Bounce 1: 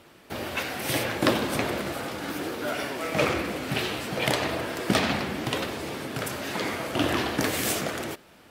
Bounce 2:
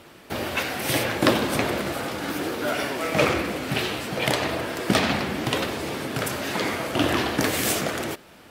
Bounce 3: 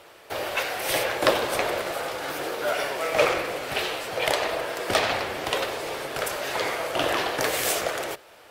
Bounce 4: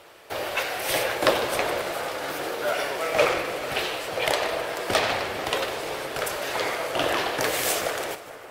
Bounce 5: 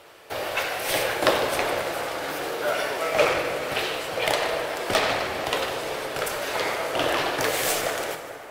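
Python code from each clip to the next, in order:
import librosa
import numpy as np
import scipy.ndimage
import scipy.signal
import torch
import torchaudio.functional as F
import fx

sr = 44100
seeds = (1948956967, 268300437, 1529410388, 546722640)

y1 = fx.rider(x, sr, range_db=4, speed_s=2.0)
y1 = y1 * 10.0 ** (2.5 / 20.0)
y2 = fx.octave_divider(y1, sr, octaves=1, level_db=-3.0)
y2 = fx.low_shelf_res(y2, sr, hz=340.0, db=-12.5, q=1.5)
y2 = y2 * 10.0 ** (-1.0 / 20.0)
y3 = fx.echo_split(y2, sr, split_hz=2100.0, low_ms=442, high_ms=152, feedback_pct=52, wet_db=-15)
y4 = fx.tracing_dist(y3, sr, depth_ms=0.02)
y4 = fx.rev_plate(y4, sr, seeds[0], rt60_s=1.9, hf_ratio=0.6, predelay_ms=0, drr_db=7.0)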